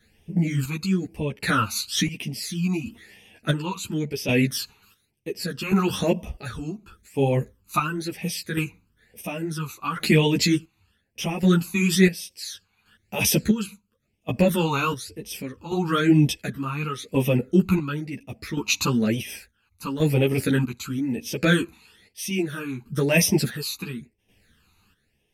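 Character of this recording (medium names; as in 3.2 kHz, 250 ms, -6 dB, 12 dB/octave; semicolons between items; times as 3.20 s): phasing stages 12, 1 Hz, lowest notch 550–1400 Hz; chopped level 0.7 Hz, depth 65%, duty 45%; a shimmering, thickened sound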